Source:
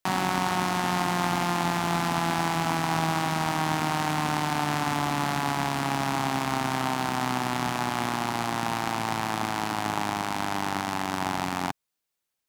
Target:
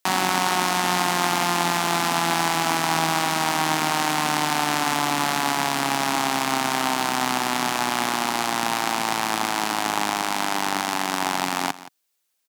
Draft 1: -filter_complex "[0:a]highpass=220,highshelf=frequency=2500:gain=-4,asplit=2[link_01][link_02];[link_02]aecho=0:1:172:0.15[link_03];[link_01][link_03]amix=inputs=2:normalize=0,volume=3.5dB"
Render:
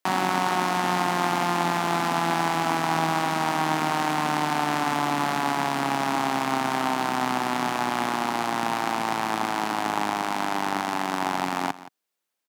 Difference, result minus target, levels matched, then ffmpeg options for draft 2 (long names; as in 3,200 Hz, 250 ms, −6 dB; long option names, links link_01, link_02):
4,000 Hz band −4.5 dB
-filter_complex "[0:a]highpass=220,highshelf=frequency=2500:gain=6.5,asplit=2[link_01][link_02];[link_02]aecho=0:1:172:0.15[link_03];[link_01][link_03]amix=inputs=2:normalize=0,volume=3.5dB"